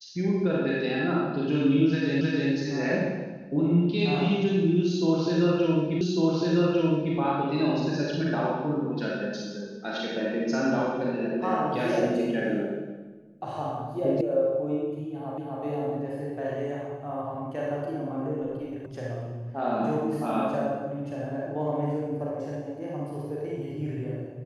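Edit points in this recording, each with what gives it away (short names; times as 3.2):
2.21 repeat of the last 0.31 s
6.01 repeat of the last 1.15 s
14.21 sound cut off
15.38 repeat of the last 0.25 s
18.86 sound cut off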